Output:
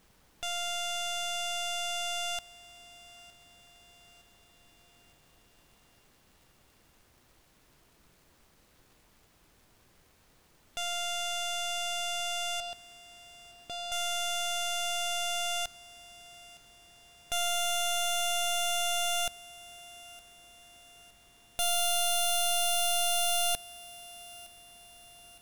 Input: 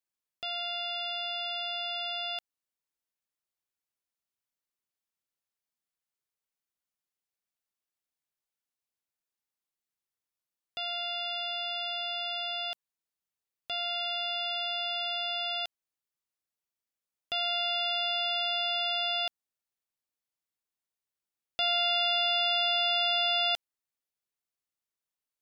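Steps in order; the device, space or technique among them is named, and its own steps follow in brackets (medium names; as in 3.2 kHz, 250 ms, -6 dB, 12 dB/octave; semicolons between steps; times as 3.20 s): 12.60–13.92 s: tilt shelf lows +8 dB, about 700 Hz; record under a worn stylus (tracing distortion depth 0.18 ms; crackle; pink noise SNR 29 dB); thinning echo 913 ms, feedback 50%, level -19.5 dB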